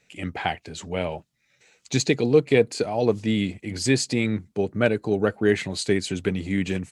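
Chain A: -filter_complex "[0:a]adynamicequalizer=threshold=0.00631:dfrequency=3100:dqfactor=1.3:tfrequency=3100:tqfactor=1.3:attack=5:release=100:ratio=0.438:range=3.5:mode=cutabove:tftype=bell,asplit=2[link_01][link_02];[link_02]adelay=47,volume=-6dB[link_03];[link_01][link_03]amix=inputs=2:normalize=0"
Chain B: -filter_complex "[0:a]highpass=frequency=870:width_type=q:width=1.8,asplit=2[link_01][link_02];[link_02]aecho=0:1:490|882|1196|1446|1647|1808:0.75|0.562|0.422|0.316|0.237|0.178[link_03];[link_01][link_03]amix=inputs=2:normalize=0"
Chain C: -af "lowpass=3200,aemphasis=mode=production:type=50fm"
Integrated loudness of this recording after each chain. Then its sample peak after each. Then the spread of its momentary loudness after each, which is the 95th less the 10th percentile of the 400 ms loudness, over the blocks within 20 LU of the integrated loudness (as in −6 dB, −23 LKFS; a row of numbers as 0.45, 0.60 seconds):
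−23.5, −26.0, −24.5 LKFS; −4.5, −7.0, −5.5 dBFS; 9, 5, 9 LU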